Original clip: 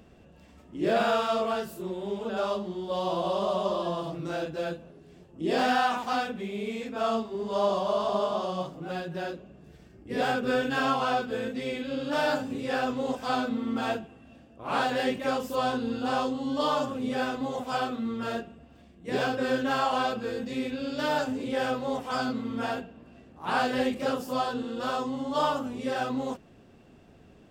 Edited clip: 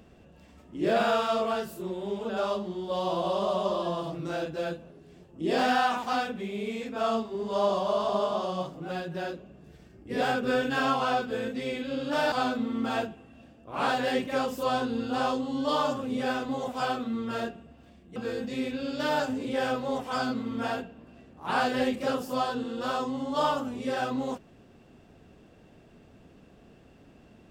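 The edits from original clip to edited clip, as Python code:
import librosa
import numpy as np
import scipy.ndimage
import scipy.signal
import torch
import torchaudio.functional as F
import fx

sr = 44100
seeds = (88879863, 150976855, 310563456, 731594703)

y = fx.edit(x, sr, fx.cut(start_s=12.32, length_s=0.92),
    fx.cut(start_s=19.08, length_s=1.07), tone=tone)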